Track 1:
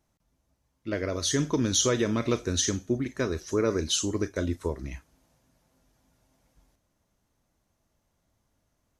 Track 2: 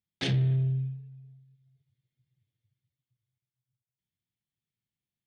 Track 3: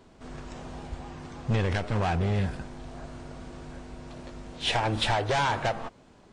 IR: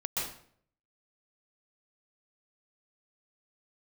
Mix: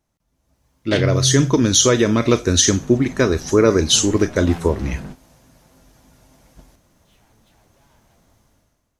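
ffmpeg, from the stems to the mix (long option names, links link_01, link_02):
-filter_complex "[0:a]volume=0dB,asplit=2[link_01][link_02];[1:a]adelay=700,volume=-5.5dB[link_03];[2:a]equalizer=frequency=180:width=1.5:gain=11.5,asoftclip=type=hard:threshold=-31dB,adelay=2450,volume=-11.5dB[link_04];[link_02]apad=whole_len=386890[link_05];[link_04][link_05]sidechaingate=range=-33dB:threshold=-56dB:ratio=16:detection=peak[link_06];[link_01][link_03][link_06]amix=inputs=3:normalize=0,dynaudnorm=framelen=110:gausssize=9:maxgain=15.5dB"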